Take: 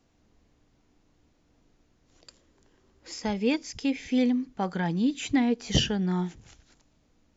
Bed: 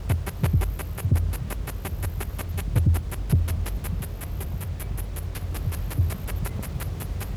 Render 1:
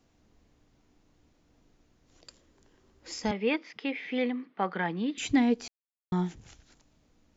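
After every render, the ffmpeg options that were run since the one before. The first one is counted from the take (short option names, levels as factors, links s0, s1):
-filter_complex "[0:a]asettb=1/sr,asplit=3[s0][s1][s2];[s0]atrim=end=3.314[s3];[s1]atrim=start=3.31:end=5.18,asetpts=PTS-STARTPTS,afade=t=in:d=0.004:c=qsin,afade=t=out:st=1.866:d=0.004:c=qsin,highpass=f=210:w=0.5412,highpass=f=210:w=1.3066,equalizer=f=260:t=q:w=4:g=-8,equalizer=f=1200:t=q:w=4:g=6,equalizer=f=2000:t=q:w=4:g=6,lowpass=f=3500:w=0.5412,lowpass=f=3500:w=1.3066[s4];[s2]atrim=start=5.176[s5];[s3][s4]acrossfade=d=0.004:c1=hsin:c2=qsin[s6];[s6][s5]acrossfade=d=0.004:c1=qsin:c2=hsin,asplit=3[s7][s8][s9];[s7]atrim=end=5.68,asetpts=PTS-STARTPTS,afade=t=out:st=5.676:d=0.004:c=hsin[s10];[s8]atrim=start=5.68:end=6.12,asetpts=PTS-STARTPTS,volume=0[s11];[s9]atrim=start=6.12,asetpts=PTS-STARTPTS,afade=t=in:d=0.004:c=hsin[s12];[s10][s11][s12]concat=n=3:v=0:a=1"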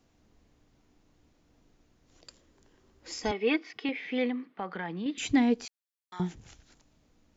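-filter_complex "[0:a]asettb=1/sr,asplit=3[s0][s1][s2];[s0]atrim=end=3.224[s3];[s1]atrim=start=3.22:end=3.89,asetpts=PTS-STARTPTS,afade=t=in:d=0.004:c=qsin,afade=t=out:st=0.666:d=0.004:c=qsin,aecho=1:1:2.7:0.65,atrim=end_sample=29547[s4];[s2]atrim=start=3.886[s5];[s3][s4]acrossfade=d=0.004:c1=hsin:c2=qsin[s6];[s6][s5]acrossfade=d=0.004:c1=qsin:c2=hsin,asettb=1/sr,asplit=3[s7][s8][s9];[s7]atrim=end=4.424[s10];[s8]atrim=start=4.42:end=5.06,asetpts=PTS-STARTPTS,afade=t=in:d=0.004:c=qsin,afade=t=out:st=0.636:d=0.004:c=qsin,acompressor=threshold=0.0178:ratio=2:attack=3.2:release=140:knee=1:detection=peak[s11];[s9]atrim=start=5.056[s12];[s10][s11]acrossfade=d=0.004:c1=hsin:c2=qsin[s13];[s13][s12]acrossfade=d=0.004:c1=qsin:c2=hsin,asettb=1/sr,asplit=3[s14][s15][s16];[s14]atrim=end=5.654[s17];[s15]atrim=start=5.65:end=6.2,asetpts=PTS-STARTPTS,afade=t=in:d=0.004:c=qsin,afade=t=out:st=0.546:d=0.004:c=qsin,highpass=1300[s18];[s16]atrim=start=6.196[s19];[s17][s18]acrossfade=d=0.004:c1=hsin:c2=qsin[s20];[s20][s19]acrossfade=d=0.004:c1=qsin:c2=hsin"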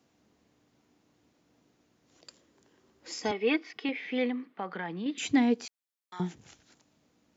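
-af "highpass=140"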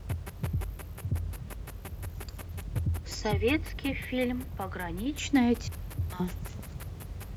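-filter_complex "[1:a]volume=0.316[s0];[0:a][s0]amix=inputs=2:normalize=0"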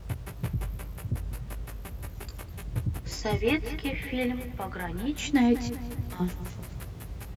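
-filter_complex "[0:a]asplit=2[s0][s1];[s1]adelay=17,volume=0.501[s2];[s0][s2]amix=inputs=2:normalize=0,asplit=2[s3][s4];[s4]adelay=199,lowpass=f=3800:p=1,volume=0.224,asplit=2[s5][s6];[s6]adelay=199,lowpass=f=3800:p=1,volume=0.5,asplit=2[s7][s8];[s8]adelay=199,lowpass=f=3800:p=1,volume=0.5,asplit=2[s9][s10];[s10]adelay=199,lowpass=f=3800:p=1,volume=0.5,asplit=2[s11][s12];[s12]adelay=199,lowpass=f=3800:p=1,volume=0.5[s13];[s3][s5][s7][s9][s11][s13]amix=inputs=6:normalize=0"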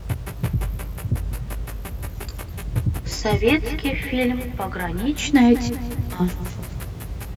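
-af "volume=2.51"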